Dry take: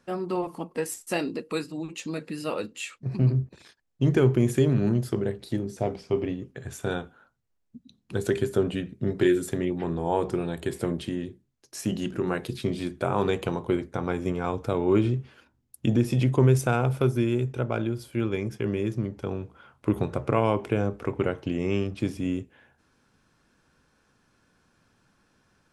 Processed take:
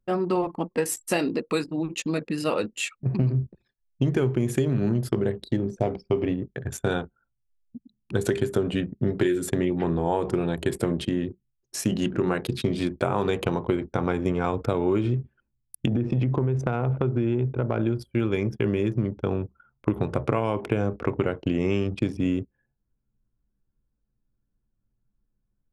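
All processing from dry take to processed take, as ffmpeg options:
-filter_complex "[0:a]asettb=1/sr,asplit=3[s0][s1][s2];[s0]atrim=end=15.874[s3];[s1]atrim=start=15.87:end=17.87,asetpts=PTS-STARTPTS,afade=t=in:d=0.004:c=qsin,afade=t=out:st=1.996:d=0.004:c=qsin,lowpass=6900,highshelf=f=2100:g=-11,acompressor=threshold=0.0708:ratio=6:attack=3.2:release=140:knee=1:detection=peak[s4];[s2]atrim=start=17.866[s5];[s3][s4]acrossfade=d=0.004:c1=hsin:c2=qsin[s6];[s6][s5]acrossfade=d=0.004:c1=qsin:c2=hsin,anlmdn=0.251,acompressor=threshold=0.0562:ratio=10,volume=2"

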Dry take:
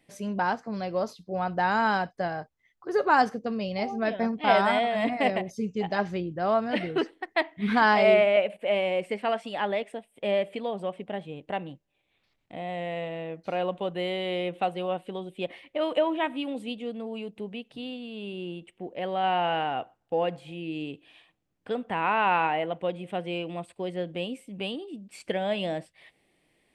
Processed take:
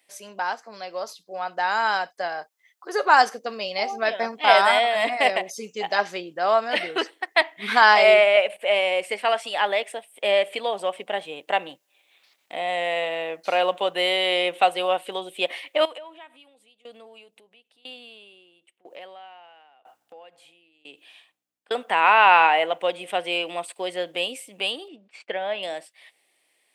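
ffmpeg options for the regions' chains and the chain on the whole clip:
-filter_complex "[0:a]asettb=1/sr,asplit=3[s0][s1][s2];[s0]atrim=end=15.854[s3];[s1]atrim=start=15.85:end=21.71,asetpts=PTS-STARTPTS,afade=t=in:d=0.004:c=qsin,afade=t=out:st=5.856:d=0.004:c=qsin,acompressor=threshold=0.00708:ratio=5:attack=3.2:release=140:knee=1:detection=peak,aeval=exprs='val(0)+0.000398*(sin(2*PI*60*n/s)+sin(2*PI*2*60*n/s)/2+sin(2*PI*3*60*n/s)/3+sin(2*PI*4*60*n/s)/4+sin(2*PI*5*60*n/s)/5)':c=same,aeval=exprs='val(0)*pow(10,-24*if(lt(mod(1*n/s,1),2*abs(1)/1000),1-mod(1*n/s,1)/(2*abs(1)/1000),(mod(1*n/s,1)-2*abs(1)/1000)/(1-2*abs(1)/1000))/20)':c=same[s4];[s2]atrim=start=21.706[s5];[s3][s4]acrossfade=d=0.004:c1=hsin:c2=qsin[s6];[s6][s5]acrossfade=d=0.004:c1=qsin:c2=hsin,asettb=1/sr,asplit=3[s7][s8][s9];[s7]atrim=end=24.884[s10];[s8]atrim=start=24.88:end=25.63,asetpts=PTS-STARTPTS,afade=t=in:d=0.004:c=qsin,afade=t=out:st=0.746:d=0.004:c=qsin,lowpass=2500,agate=range=0.0224:threshold=0.00224:ratio=3:release=100:detection=peak[s11];[s9]atrim=start=25.626[s12];[s10][s11]acrossfade=d=0.004:c1=hsin:c2=qsin[s13];[s13][s12]acrossfade=d=0.004:c1=qsin:c2=hsin,highpass=590,highshelf=f=4100:g=10,dynaudnorm=f=420:g=11:m=3.35"

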